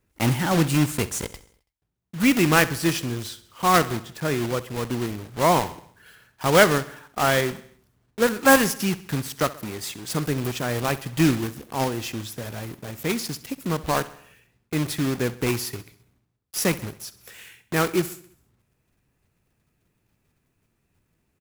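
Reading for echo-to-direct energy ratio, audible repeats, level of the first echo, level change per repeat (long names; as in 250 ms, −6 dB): −16.0 dB, 4, −17.5 dB, −5.5 dB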